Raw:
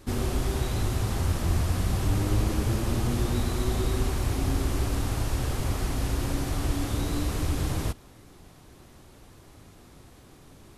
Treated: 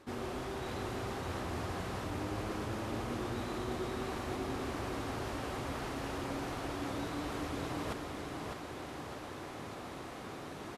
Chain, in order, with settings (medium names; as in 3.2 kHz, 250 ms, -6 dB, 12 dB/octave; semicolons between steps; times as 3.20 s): high-pass 560 Hz 6 dB/octave; reverse; compression 6:1, threshold -50 dBFS, peak gain reduction 17.5 dB; reverse; low-pass 1.6 kHz 6 dB/octave; feedback delay 604 ms, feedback 52%, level -5 dB; trim +13.5 dB